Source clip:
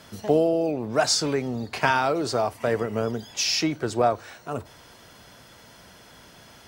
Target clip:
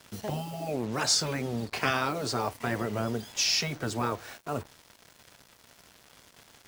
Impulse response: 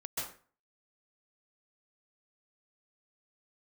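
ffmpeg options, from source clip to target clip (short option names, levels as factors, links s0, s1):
-af "acrusher=bits=6:mix=0:aa=0.5,afftfilt=real='re*lt(hypot(re,im),0.355)':imag='im*lt(hypot(re,im),0.355)':win_size=1024:overlap=0.75,volume=0.841"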